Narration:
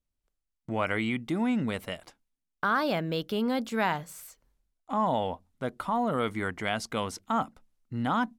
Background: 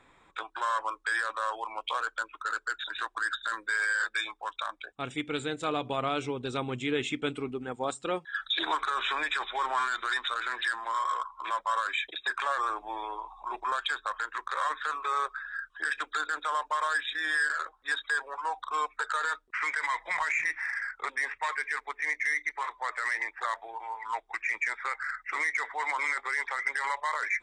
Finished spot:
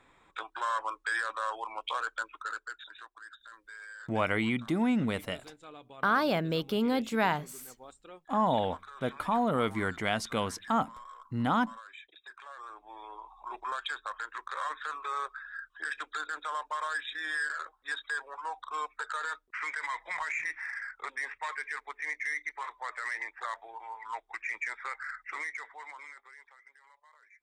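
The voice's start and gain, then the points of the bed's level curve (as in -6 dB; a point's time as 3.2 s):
3.40 s, 0.0 dB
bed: 2.35 s -2 dB
3.2 s -18.5 dB
12.45 s -18.5 dB
13.38 s -5 dB
25.28 s -5 dB
26.82 s -30.5 dB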